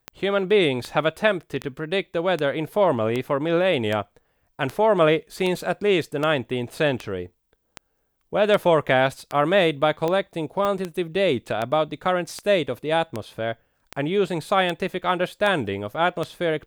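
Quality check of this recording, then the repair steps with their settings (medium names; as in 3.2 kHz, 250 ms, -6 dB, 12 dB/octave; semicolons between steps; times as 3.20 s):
tick 78 rpm -13 dBFS
10.65 s: pop -12 dBFS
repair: de-click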